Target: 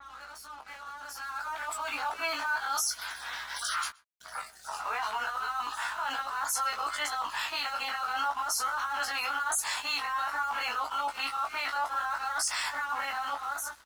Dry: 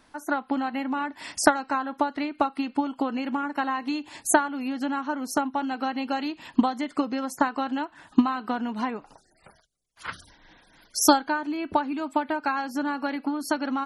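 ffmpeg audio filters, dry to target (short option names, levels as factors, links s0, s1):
-filter_complex "[0:a]areverse,highpass=f=750:w=0.5412,highpass=f=750:w=1.3066,equalizer=f=1300:w=3.2:g=9.5,acontrast=77,alimiter=level_in=3.35:limit=0.0631:level=0:latency=1:release=36,volume=0.299,dynaudnorm=f=960:g=3:m=4.22,aeval=exprs='val(0)+0.000794*(sin(2*PI*60*n/s)+sin(2*PI*2*60*n/s)/2+sin(2*PI*3*60*n/s)/3+sin(2*PI*4*60*n/s)/4+sin(2*PI*5*60*n/s)/5)':c=same,flanger=delay=20:depth=2:speed=0.57,aeval=exprs='sgn(val(0))*max(abs(val(0))-0.00266,0)':c=same,asplit=2[s0][s1];[s1]adelay=14,volume=0.473[s2];[s0][s2]amix=inputs=2:normalize=0,asplit=2[s3][s4];[s4]adelay=122.4,volume=0.0501,highshelf=f=4000:g=-2.76[s5];[s3][s5]amix=inputs=2:normalize=0,adynamicequalizer=threshold=0.00447:dfrequency=4000:dqfactor=0.7:tfrequency=4000:tqfactor=0.7:attack=5:release=100:ratio=0.375:range=2.5:mode=boostabove:tftype=highshelf"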